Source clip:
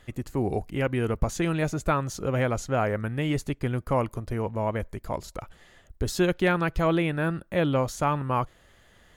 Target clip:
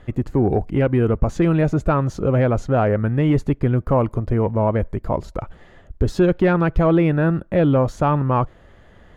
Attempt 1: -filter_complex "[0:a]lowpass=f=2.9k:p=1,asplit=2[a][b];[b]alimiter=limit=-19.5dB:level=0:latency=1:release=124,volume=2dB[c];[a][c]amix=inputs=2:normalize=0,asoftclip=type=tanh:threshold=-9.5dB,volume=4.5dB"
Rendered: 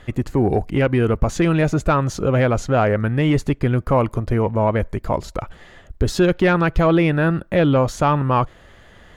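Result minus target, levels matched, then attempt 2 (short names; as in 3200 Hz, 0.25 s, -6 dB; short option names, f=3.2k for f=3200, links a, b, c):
4000 Hz band +8.0 dB
-filter_complex "[0:a]lowpass=f=850:p=1,asplit=2[a][b];[b]alimiter=limit=-19.5dB:level=0:latency=1:release=124,volume=2dB[c];[a][c]amix=inputs=2:normalize=0,asoftclip=type=tanh:threshold=-9.5dB,volume=4.5dB"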